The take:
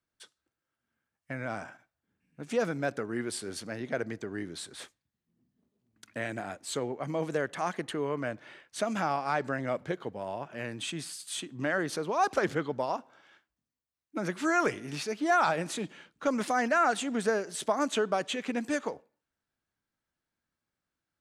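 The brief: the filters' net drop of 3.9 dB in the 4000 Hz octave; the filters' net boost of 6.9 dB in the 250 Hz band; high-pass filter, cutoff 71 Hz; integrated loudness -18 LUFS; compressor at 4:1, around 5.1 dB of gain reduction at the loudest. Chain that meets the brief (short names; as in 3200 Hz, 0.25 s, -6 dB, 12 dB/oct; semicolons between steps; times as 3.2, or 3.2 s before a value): HPF 71 Hz; bell 250 Hz +8.5 dB; bell 4000 Hz -5 dB; compressor 4:1, threshold -26 dBFS; gain +14.5 dB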